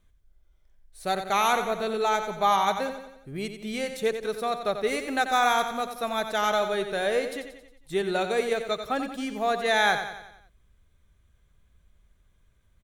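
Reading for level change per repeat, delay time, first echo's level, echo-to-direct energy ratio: -6.0 dB, 90 ms, -9.0 dB, -7.5 dB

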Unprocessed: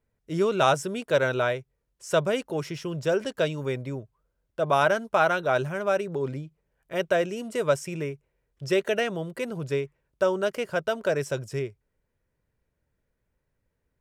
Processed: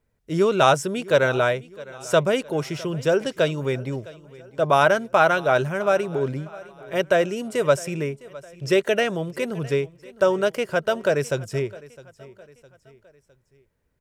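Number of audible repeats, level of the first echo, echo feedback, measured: 3, -20.5 dB, 46%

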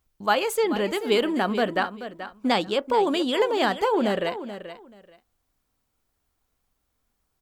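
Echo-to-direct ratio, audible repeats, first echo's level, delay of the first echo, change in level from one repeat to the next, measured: -12.0 dB, 2, -12.0 dB, 432 ms, -14.5 dB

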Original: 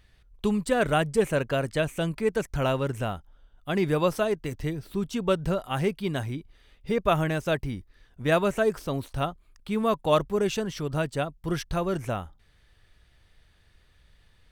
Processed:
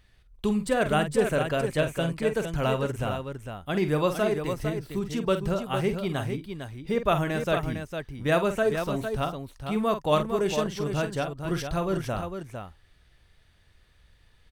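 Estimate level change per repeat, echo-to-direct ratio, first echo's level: no regular repeats, -5.0 dB, -9.5 dB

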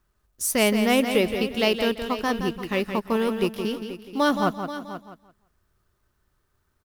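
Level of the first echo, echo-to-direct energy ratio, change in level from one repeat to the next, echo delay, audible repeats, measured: -8.0 dB, -6.5 dB, no regular repeats, 170 ms, 5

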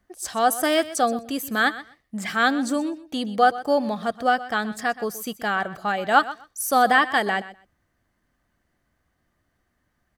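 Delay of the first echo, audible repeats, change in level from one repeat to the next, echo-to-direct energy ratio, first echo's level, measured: 125 ms, 2, -16.0 dB, -16.0 dB, -16.0 dB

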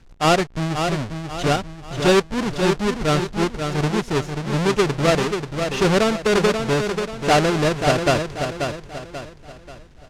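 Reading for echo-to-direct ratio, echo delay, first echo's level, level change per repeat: -6.0 dB, 536 ms, -6.5 dB, -8.0 dB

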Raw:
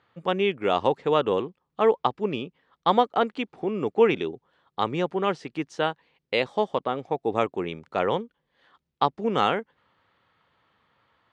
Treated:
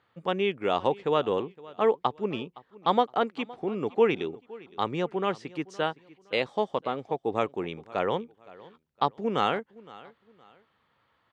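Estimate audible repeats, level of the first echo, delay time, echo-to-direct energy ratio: 2, -21.0 dB, 515 ms, -20.5 dB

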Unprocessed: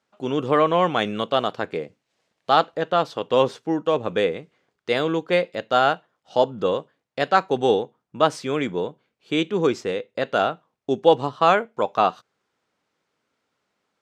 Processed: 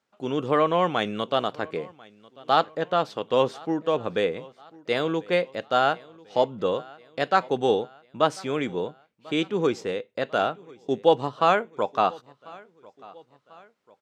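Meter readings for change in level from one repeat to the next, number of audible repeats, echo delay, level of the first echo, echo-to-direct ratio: -6.5 dB, 2, 1043 ms, -23.5 dB, -22.5 dB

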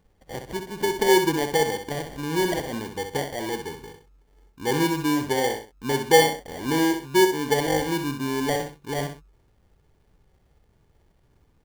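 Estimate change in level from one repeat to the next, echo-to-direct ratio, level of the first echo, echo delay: -9.5 dB, -7.0 dB, -7.5 dB, 64 ms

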